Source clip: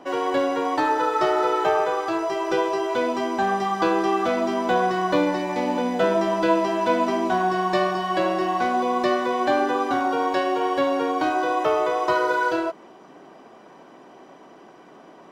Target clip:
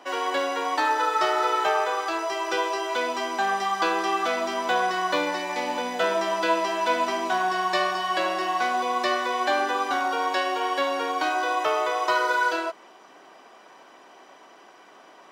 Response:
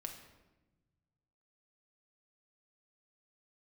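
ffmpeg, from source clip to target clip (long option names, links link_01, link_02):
-af "highpass=frequency=1500:poles=1,volume=4.5dB"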